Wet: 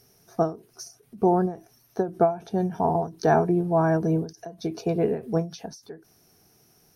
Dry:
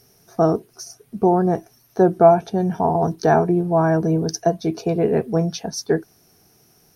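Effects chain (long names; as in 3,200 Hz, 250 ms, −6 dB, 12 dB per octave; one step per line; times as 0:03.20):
every ending faded ahead of time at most 170 dB per second
level −4 dB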